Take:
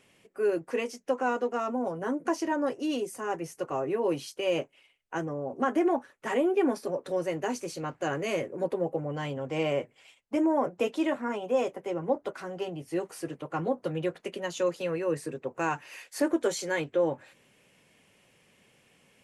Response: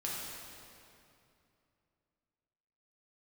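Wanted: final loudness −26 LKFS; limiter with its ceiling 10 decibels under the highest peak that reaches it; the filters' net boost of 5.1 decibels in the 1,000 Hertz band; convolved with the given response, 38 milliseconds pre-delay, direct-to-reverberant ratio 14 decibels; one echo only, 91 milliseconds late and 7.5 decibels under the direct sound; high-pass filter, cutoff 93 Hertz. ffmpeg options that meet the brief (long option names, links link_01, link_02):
-filter_complex "[0:a]highpass=93,equalizer=frequency=1000:width_type=o:gain=6.5,alimiter=limit=-21dB:level=0:latency=1,aecho=1:1:91:0.422,asplit=2[link_01][link_02];[1:a]atrim=start_sample=2205,adelay=38[link_03];[link_02][link_03]afir=irnorm=-1:irlink=0,volume=-17dB[link_04];[link_01][link_04]amix=inputs=2:normalize=0,volume=5dB"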